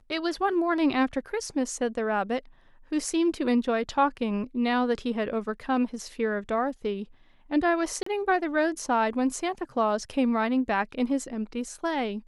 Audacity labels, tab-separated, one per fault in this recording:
8.030000	8.060000	gap 34 ms

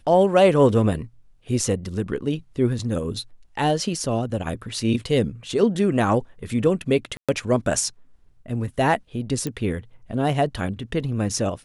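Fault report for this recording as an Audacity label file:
7.170000	7.290000	gap 0.116 s
9.470000	9.470000	pop -14 dBFS

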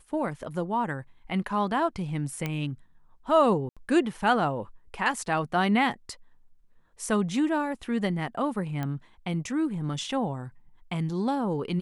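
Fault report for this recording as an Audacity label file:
2.460000	2.460000	pop -16 dBFS
3.690000	3.770000	gap 76 ms
8.830000	8.830000	pop -19 dBFS

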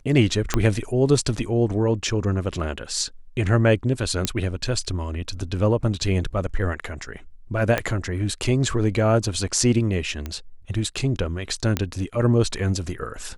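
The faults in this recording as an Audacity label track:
0.540000	0.540000	pop -5 dBFS
4.250000	4.250000	pop -6 dBFS
7.780000	7.780000	pop -7 dBFS
10.260000	10.260000	pop -16 dBFS
11.770000	11.770000	pop -7 dBFS

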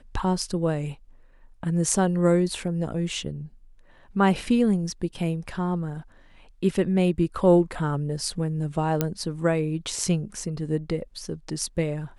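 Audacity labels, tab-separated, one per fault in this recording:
9.010000	9.010000	pop -8 dBFS

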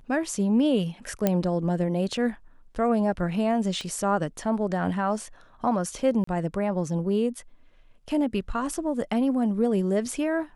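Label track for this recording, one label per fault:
1.270000	1.270000	pop -9 dBFS
3.810000	3.810000	pop -22 dBFS
6.240000	6.270000	gap 34 ms

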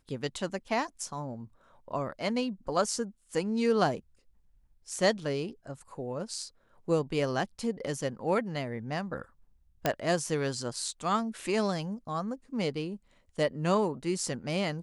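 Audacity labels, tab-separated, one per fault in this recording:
9.860000	9.860000	pop -11 dBFS

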